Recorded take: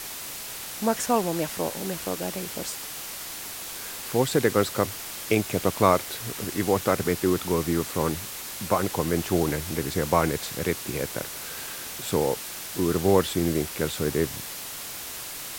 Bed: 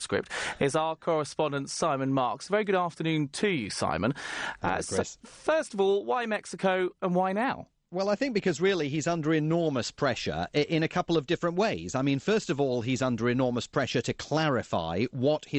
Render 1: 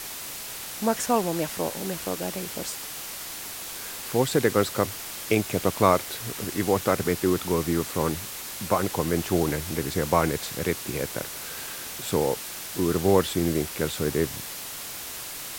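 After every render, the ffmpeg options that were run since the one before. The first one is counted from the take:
-af anull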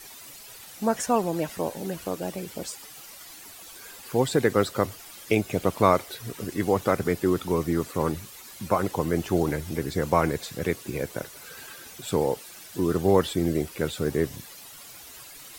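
-af "afftdn=nr=12:nf=-37"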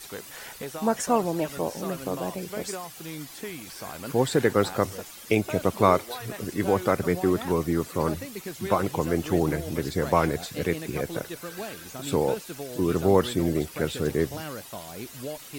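-filter_complex "[1:a]volume=-10.5dB[a];[0:a][a]amix=inputs=2:normalize=0"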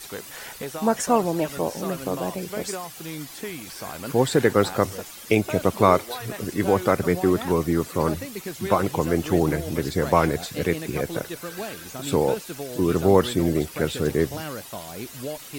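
-af "volume=3dB,alimiter=limit=-2dB:level=0:latency=1"

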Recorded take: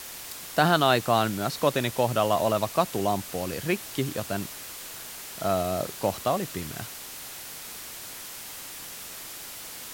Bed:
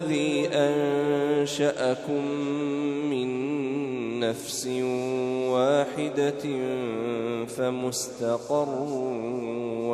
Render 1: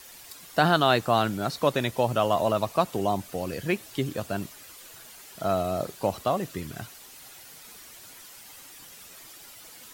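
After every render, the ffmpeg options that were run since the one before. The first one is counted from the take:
-af "afftdn=nr=10:nf=-41"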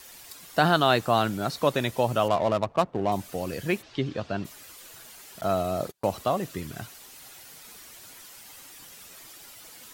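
-filter_complex "[0:a]asettb=1/sr,asplit=3[a][b][c];[a]atrim=end=2.284[d];[b]atrim=start=2.28:end=3.12,asetpts=PTS-STARTPTS,afade=t=in:d=0.004:c=qsin,afade=t=out:st=0.836:d=0.004:c=qsin,adynamicsmooth=sensitivity=3.5:basefreq=610[e];[c]atrim=start=3.116[f];[d][e]acrossfade=d=0.004:c1=hsin:c2=qsin[g];[g][f]acrossfade=d=0.004:c1=qsin:c2=hsin,asplit=3[h][i][j];[h]afade=t=out:st=3.81:d=0.02[k];[i]lowpass=f=5.1k:w=0.5412,lowpass=f=5.1k:w=1.3066,afade=t=in:st=3.81:d=0.02,afade=t=out:st=4.44:d=0.02[l];[j]afade=t=in:st=4.44:d=0.02[m];[k][l][m]amix=inputs=3:normalize=0,asettb=1/sr,asplit=3[n][o][p];[n]atrim=end=5.414[q];[o]atrim=start=5.41:end=6.14,asetpts=PTS-STARTPTS,afade=t=in:d=0.004:c=qsin,afade=t=out:st=0.726:d=0.004:c=qsin,agate=range=-32dB:threshold=-39dB:ratio=16:release=100:detection=peak[r];[p]atrim=start=6.136[s];[q][r]acrossfade=d=0.004:c1=hsin:c2=qsin[t];[t][s]acrossfade=d=0.004:c1=qsin:c2=hsin"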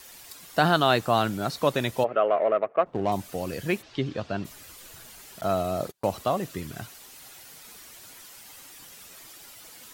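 -filter_complex "[0:a]asplit=3[a][b][c];[a]afade=t=out:st=2.03:d=0.02[d];[b]highpass=400,equalizer=f=430:t=q:w=4:g=7,equalizer=f=620:t=q:w=4:g=4,equalizer=f=930:t=q:w=4:g=-10,equalizer=f=1.3k:t=q:w=4:g=4,equalizer=f=2.1k:t=q:w=4:g=3,lowpass=f=2.3k:w=0.5412,lowpass=f=2.3k:w=1.3066,afade=t=in:st=2.03:d=0.02,afade=t=out:st=2.85:d=0.02[e];[c]afade=t=in:st=2.85:d=0.02[f];[d][e][f]amix=inputs=3:normalize=0,asettb=1/sr,asplit=3[g][h][i];[g]atrim=end=4.474[j];[h]atrim=start=4.47:end=5.35,asetpts=PTS-STARTPTS,afade=t=in:d=0.004:c=qsin,afade=t=out:st=0.876:d=0.004:c=qsin,lowshelf=f=160:g=9.5[k];[i]atrim=start=5.346[l];[j][k]acrossfade=d=0.004:c1=hsin:c2=qsin[m];[m][l]acrossfade=d=0.004:c1=qsin:c2=hsin"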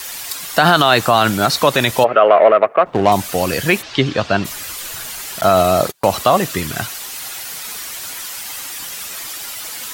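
-filter_complex "[0:a]acrossover=split=750[a][b];[b]acontrast=83[c];[a][c]amix=inputs=2:normalize=0,alimiter=level_in=11.5dB:limit=-1dB:release=50:level=0:latency=1"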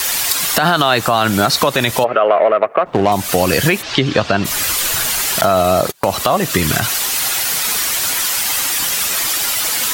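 -af "acompressor=threshold=-20dB:ratio=10,alimiter=level_in=11dB:limit=-1dB:release=50:level=0:latency=1"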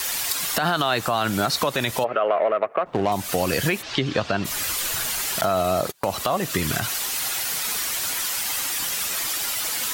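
-af "volume=-8.5dB"

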